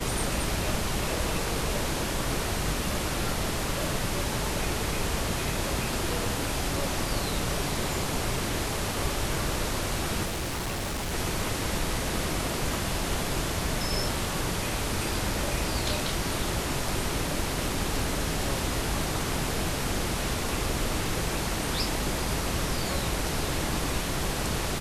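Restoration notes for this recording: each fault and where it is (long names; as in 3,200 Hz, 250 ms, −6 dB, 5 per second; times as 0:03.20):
0:10.25–0:11.14: clipping −28 dBFS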